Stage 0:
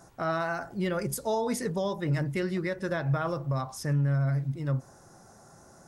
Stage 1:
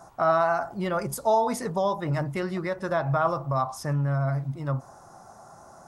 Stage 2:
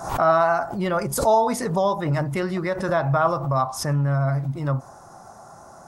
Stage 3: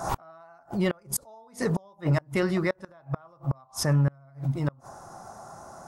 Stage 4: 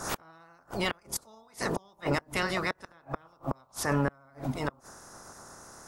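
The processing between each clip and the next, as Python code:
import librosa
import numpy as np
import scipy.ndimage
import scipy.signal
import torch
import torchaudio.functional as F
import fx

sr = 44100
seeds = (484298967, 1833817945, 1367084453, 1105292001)

y1 = fx.band_shelf(x, sr, hz=900.0, db=9.5, octaves=1.3)
y2 = fx.pre_swell(y1, sr, db_per_s=82.0)
y2 = y2 * librosa.db_to_amplitude(4.0)
y3 = fx.gate_flip(y2, sr, shuts_db=-14.0, range_db=-32)
y4 = fx.spec_clip(y3, sr, under_db=20)
y4 = y4 * librosa.db_to_amplitude(-4.5)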